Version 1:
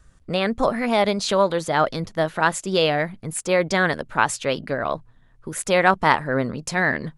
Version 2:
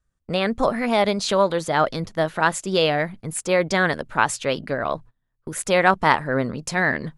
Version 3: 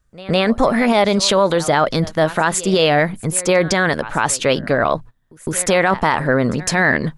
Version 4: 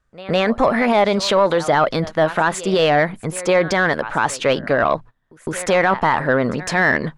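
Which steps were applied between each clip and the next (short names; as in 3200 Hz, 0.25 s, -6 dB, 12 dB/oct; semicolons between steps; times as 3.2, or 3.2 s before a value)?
gate -39 dBFS, range -21 dB
pre-echo 0.158 s -22.5 dB; maximiser +13.5 dB; gain -4 dB
overdrive pedal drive 8 dB, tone 1800 Hz, clips at -4.5 dBFS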